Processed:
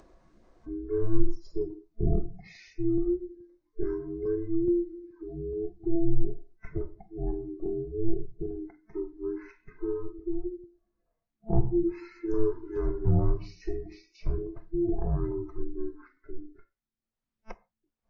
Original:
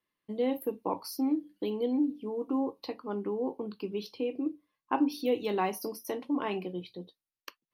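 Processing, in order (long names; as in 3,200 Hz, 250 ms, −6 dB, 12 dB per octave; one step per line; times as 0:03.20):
neighbouring bands swapped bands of 500 Hz
spectral tilt −4 dB per octave
upward compression, threshold −36 dBFS
auto-filter notch saw up 5.5 Hz 220–2,900 Hz
wrong playback speed 78 rpm record played at 33 rpm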